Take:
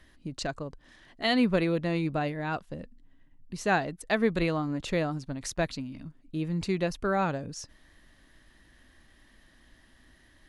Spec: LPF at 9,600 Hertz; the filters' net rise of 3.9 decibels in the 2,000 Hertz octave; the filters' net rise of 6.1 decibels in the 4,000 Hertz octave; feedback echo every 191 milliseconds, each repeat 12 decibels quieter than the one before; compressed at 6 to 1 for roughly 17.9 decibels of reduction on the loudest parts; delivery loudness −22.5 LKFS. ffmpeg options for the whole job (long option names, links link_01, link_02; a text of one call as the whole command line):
ffmpeg -i in.wav -af "lowpass=9600,equalizer=frequency=2000:width_type=o:gain=3.5,equalizer=frequency=4000:width_type=o:gain=6.5,acompressor=threshold=-39dB:ratio=6,aecho=1:1:191|382|573:0.251|0.0628|0.0157,volume=20dB" out.wav